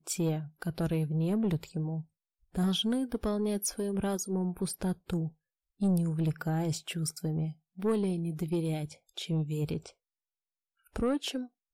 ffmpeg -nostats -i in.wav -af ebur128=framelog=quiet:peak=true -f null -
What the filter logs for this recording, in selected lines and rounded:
Integrated loudness:
  I:         -32.5 LUFS
  Threshold: -42.7 LUFS
Loudness range:
  LRA:         3.0 LU
  Threshold: -52.8 LUFS
  LRA low:   -34.9 LUFS
  LRA high:  -31.8 LUFS
True peak:
  Peak:      -20.3 dBFS